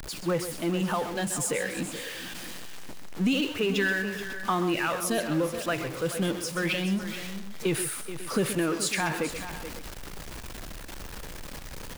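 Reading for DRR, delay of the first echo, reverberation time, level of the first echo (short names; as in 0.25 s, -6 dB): none, 0.129 s, none, -11.0 dB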